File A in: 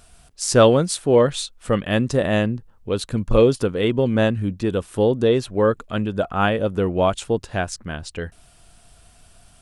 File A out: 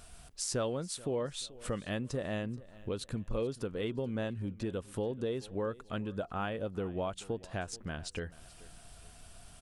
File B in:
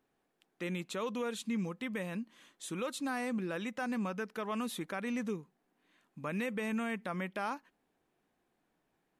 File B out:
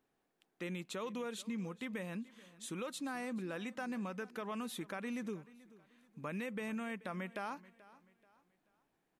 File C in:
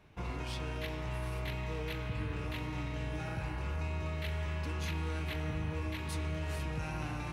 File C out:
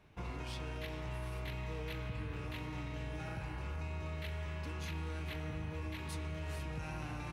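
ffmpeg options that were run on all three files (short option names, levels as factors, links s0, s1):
-af "acompressor=threshold=0.0178:ratio=3,aecho=1:1:433|866|1299:0.1|0.036|0.013,volume=0.75"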